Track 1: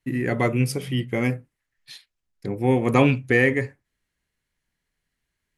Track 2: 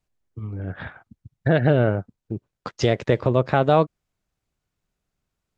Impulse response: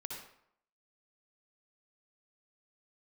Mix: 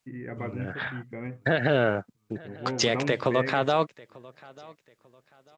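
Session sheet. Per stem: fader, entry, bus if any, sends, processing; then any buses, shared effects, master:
−13.5 dB, 0.00 s, no send, no echo send, inverse Chebyshev low-pass filter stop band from 6,900 Hz, stop band 60 dB
+2.0 dB, 0.00 s, no send, echo send −23 dB, high-pass filter 150 Hz 12 dB per octave; tilt shelving filter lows −6 dB, about 930 Hz; brickwall limiter −14.5 dBFS, peak gain reduction 8 dB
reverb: not used
echo: repeating echo 893 ms, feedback 29%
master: no processing

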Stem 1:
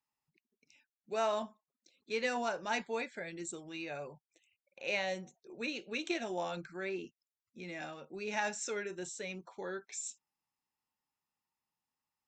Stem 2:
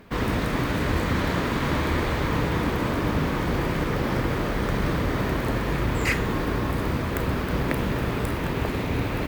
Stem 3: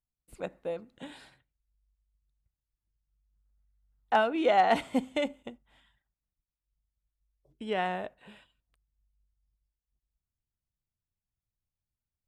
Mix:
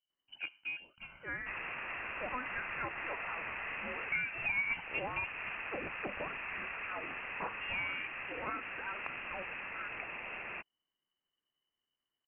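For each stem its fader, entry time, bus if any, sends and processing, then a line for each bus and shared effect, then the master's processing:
+2.0 dB, 0.10 s, no send, high-pass filter 1,200 Hz 24 dB per octave
−10.5 dB, 1.35 s, no send, high-pass filter 480 Hz 12 dB per octave
−5.5 dB, 0.00 s, no send, comb filter 1.4 ms, depth 65%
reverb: not used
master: voice inversion scrambler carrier 3,000 Hz; downward compressor 2.5 to 1, threshold −36 dBFS, peak gain reduction 11 dB

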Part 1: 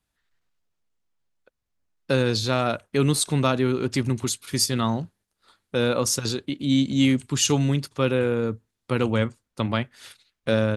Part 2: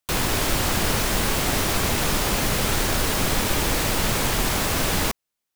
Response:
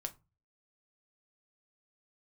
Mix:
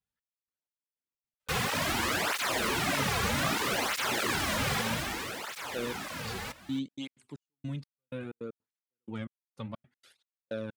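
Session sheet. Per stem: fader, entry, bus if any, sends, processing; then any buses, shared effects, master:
−12.0 dB, 0.00 s, no send, no echo send, soft clipping −7.5 dBFS, distortion −26 dB; gate pattern "xx...xx...xx.x." 157 BPM −60 dB
0:04.76 −3 dB → 0:05.39 −12 dB, 1.40 s, no send, echo send −15 dB, parametric band 1,700 Hz +6.5 dB 2.3 octaves; through-zero flanger with one copy inverted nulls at 1.6 Hz, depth 7.9 ms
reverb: not used
echo: single-tap delay 273 ms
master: high-shelf EQ 8,800 Hz −4 dB; through-zero flanger with one copy inverted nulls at 0.63 Hz, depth 3.4 ms

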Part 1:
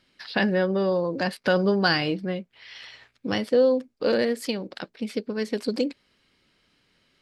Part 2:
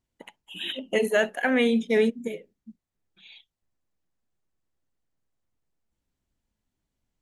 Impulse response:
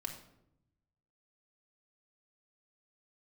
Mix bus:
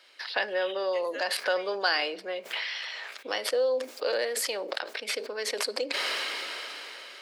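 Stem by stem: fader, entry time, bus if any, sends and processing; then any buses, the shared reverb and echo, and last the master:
−4.0 dB, 0.00 s, send −14.5 dB, level that may fall only so fast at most 22 dB per second
−15.5 dB, 0.00 s, no send, flat-topped bell 2,400 Hz +11.5 dB 2.6 octaves; automatic ducking −13 dB, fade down 1.20 s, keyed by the first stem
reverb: on, RT60 0.80 s, pre-delay 3 ms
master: high-pass filter 480 Hz 24 dB per octave; multiband upward and downward compressor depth 40%

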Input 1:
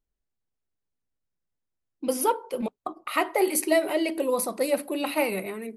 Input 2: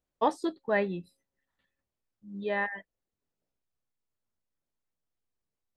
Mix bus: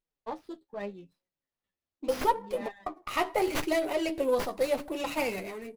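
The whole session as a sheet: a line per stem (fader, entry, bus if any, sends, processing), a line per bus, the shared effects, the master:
+2.5 dB, 0.00 s, no send, low-shelf EQ 200 Hz −12 dB
−7.0 dB, 0.05 s, no send, no processing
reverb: not used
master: flanger 0.8 Hz, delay 5.2 ms, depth 7.3 ms, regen +28%; parametric band 1,600 Hz −6 dB 0.65 octaves; windowed peak hold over 5 samples

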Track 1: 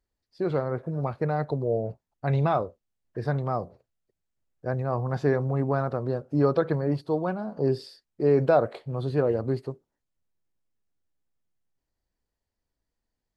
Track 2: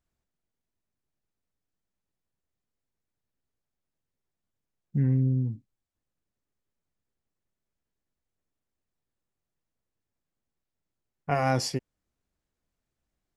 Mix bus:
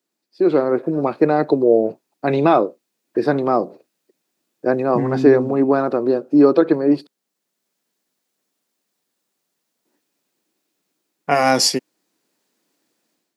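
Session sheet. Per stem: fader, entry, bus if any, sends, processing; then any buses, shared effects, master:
+1.0 dB, 0.00 s, muted 0:07.07–0:09.85, no send, hollow resonant body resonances 320/2,500 Hz, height 10 dB, ringing for 25 ms
+2.5 dB, 0.00 s, no send, high-shelf EQ 4,400 Hz +6.5 dB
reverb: not used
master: high-pass filter 200 Hz 24 dB per octave; parametric band 4,300 Hz +3 dB; automatic gain control gain up to 10 dB

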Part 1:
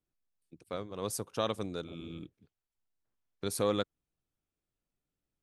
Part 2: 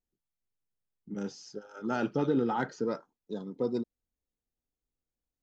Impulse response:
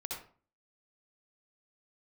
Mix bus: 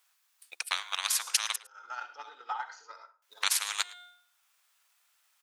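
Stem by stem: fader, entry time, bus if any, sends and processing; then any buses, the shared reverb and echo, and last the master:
+0.5 dB, 0.00 s, muted 0:01.56–0:03.22, no send, echo send −15 dB, hum removal 356.4 Hz, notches 24; every bin compressed towards the loudest bin 10 to 1
+0.5 dB, 0.00 s, send −3 dB, no echo send, brickwall limiter −28 dBFS, peak gain reduction 11 dB; automatic ducking −16 dB, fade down 0.85 s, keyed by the first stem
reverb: on, RT60 0.40 s, pre-delay 58 ms
echo: single-tap delay 108 ms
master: high-pass filter 960 Hz 24 dB per octave; transient designer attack +9 dB, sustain −3 dB

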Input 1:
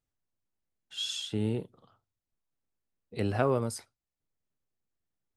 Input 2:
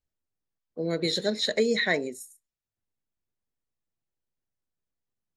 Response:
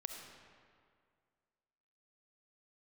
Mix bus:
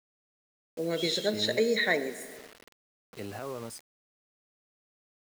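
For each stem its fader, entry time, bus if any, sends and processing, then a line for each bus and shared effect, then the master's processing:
−4.5 dB, 0.00 s, no send, brickwall limiter −21 dBFS, peak gain reduction 9.5 dB
−3.5 dB, 0.00 s, send −3 dB, high-shelf EQ 3,000 Hz −3 dB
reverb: on, RT60 2.1 s, pre-delay 25 ms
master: low-shelf EQ 160 Hz −11.5 dB; bit-depth reduction 8 bits, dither none

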